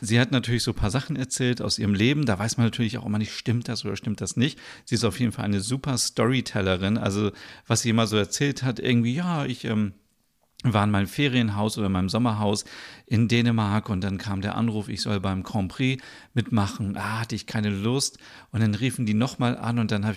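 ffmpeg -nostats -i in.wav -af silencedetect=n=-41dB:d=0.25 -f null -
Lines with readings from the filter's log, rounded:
silence_start: 9.92
silence_end: 10.60 | silence_duration: 0.68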